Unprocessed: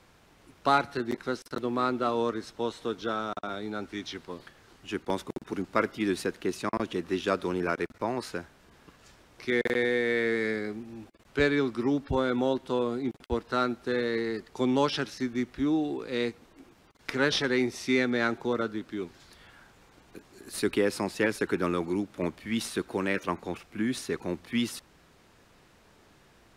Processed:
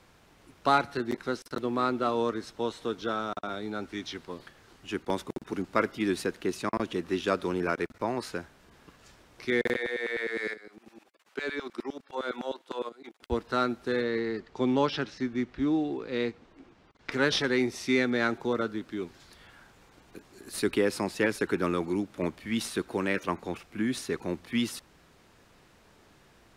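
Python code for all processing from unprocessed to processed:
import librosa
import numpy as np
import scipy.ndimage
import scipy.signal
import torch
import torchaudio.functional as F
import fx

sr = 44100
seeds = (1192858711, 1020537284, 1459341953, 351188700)

y = fx.chain(x, sr, fx.level_steps(step_db=15),
    fx.filter_lfo_highpass(shape='saw_down', hz=9.8, low_hz=250.0, high_hz=1900.0, q=0.94), at=(9.76, 13.23))
y = fx.chain(y, sr, fx.quant_float(bits=4),
    fx.air_absorb(metres=110.0), at=(14.02, 17.12))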